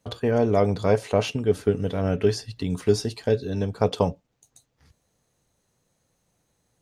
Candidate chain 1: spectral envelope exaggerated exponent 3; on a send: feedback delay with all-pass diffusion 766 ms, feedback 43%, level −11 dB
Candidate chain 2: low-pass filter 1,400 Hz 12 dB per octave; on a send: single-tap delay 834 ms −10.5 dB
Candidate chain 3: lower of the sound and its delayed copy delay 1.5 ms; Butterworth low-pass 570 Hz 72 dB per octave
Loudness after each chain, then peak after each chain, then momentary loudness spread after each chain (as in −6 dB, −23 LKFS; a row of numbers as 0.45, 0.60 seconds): −24.5, −24.5, −29.5 LKFS; −7.0, −5.5, −12.5 dBFS; 18, 13, 5 LU